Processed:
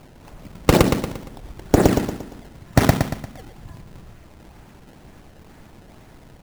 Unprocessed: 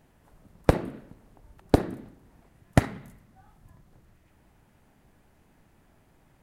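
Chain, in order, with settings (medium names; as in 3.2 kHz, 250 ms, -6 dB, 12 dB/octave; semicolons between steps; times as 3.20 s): decimation with a swept rate 22×, swing 160% 2.1 Hz; on a send: feedback delay 116 ms, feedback 43%, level -10 dB; on the sum: loudness maximiser +16 dB; trim -1 dB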